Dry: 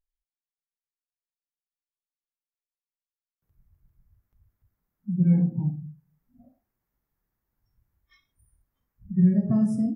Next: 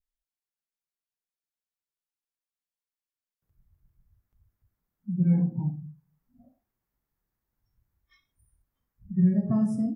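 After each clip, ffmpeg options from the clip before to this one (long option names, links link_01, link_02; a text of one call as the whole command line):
ffmpeg -i in.wav -af "adynamicequalizer=threshold=0.00282:dfrequency=1000:dqfactor=1.9:tfrequency=1000:tqfactor=1.9:attack=5:release=100:ratio=0.375:range=3.5:mode=boostabove:tftype=bell,volume=-2.5dB" out.wav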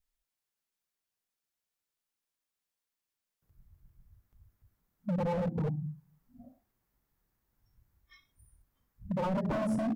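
ffmpeg -i in.wav -filter_complex "[0:a]asplit=2[link_01][link_02];[link_02]acompressor=threshold=-33dB:ratio=5,volume=2dB[link_03];[link_01][link_03]amix=inputs=2:normalize=0,aeval=exprs='0.0668*(abs(mod(val(0)/0.0668+3,4)-2)-1)':channel_layout=same,volume=-2.5dB" out.wav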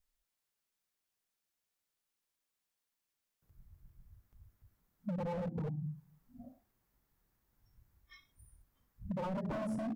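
ffmpeg -i in.wav -af "acompressor=threshold=-37dB:ratio=5,volume=1dB" out.wav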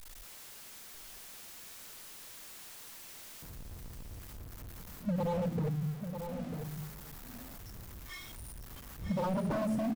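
ffmpeg -i in.wav -af "aeval=exprs='val(0)+0.5*0.00473*sgn(val(0))':channel_layout=same,aecho=1:1:946:0.398,volume=4dB" out.wav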